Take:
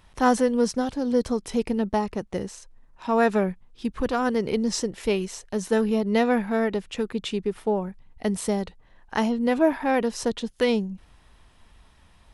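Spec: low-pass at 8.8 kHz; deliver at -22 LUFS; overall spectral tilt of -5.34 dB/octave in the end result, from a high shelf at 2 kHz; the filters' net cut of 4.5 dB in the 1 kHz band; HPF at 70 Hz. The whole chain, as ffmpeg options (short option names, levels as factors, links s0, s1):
-af "highpass=70,lowpass=8800,equalizer=f=1000:t=o:g=-5.5,highshelf=f=2000:g=-4,volume=1.68"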